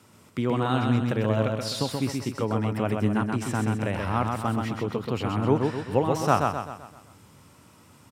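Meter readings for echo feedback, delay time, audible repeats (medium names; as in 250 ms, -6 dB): 46%, 129 ms, 5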